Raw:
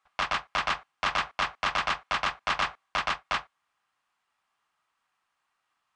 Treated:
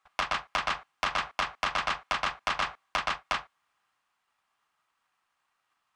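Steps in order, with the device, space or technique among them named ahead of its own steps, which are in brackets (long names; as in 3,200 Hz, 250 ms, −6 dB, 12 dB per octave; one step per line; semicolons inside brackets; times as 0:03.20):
drum-bus smash (transient designer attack +7 dB, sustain +2 dB; downward compressor 10 to 1, threshold −23 dBFS, peak gain reduction 6.5 dB; soft clipping −17.5 dBFS, distortion −16 dB)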